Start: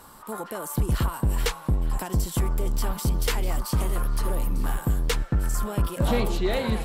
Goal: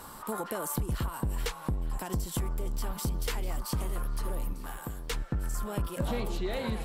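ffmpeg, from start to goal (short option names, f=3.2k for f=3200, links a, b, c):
-filter_complex "[0:a]acompressor=threshold=-33dB:ratio=4,asettb=1/sr,asplit=3[a][b][c];[a]atrim=end=4.534[d];[b]atrim=start=4.53:end=5.11,asetpts=PTS-STARTPTS,afade=t=in:d=0.004:c=qsin,afade=t=out:st=0.576:d=0.004:c=qsin,lowshelf=f=330:g=-8.5[e];[c]atrim=start=5.106[f];[d][e]acrossfade=d=0.004:c1=hsin:c2=qsin[g];[g][f]acrossfade=d=0.004:c1=qsin:c2=hsin,volume=2.5dB"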